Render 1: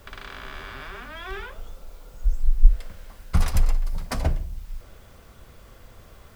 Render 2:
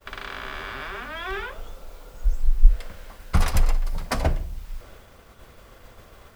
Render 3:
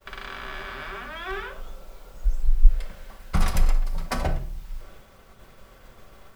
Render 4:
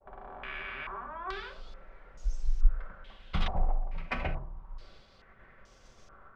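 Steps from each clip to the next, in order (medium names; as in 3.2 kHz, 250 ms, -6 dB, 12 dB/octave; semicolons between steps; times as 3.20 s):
tone controls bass -5 dB, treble -3 dB; expander -47 dBFS; trim +5 dB
reverberation, pre-delay 5 ms, DRR 6.5 dB; trim -3 dB
step-sequenced low-pass 2.3 Hz 770–6000 Hz; trim -8.5 dB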